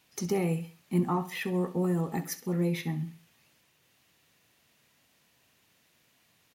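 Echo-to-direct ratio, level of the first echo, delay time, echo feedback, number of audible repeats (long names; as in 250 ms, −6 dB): −14.5 dB, −15.0 dB, 66 ms, 38%, 3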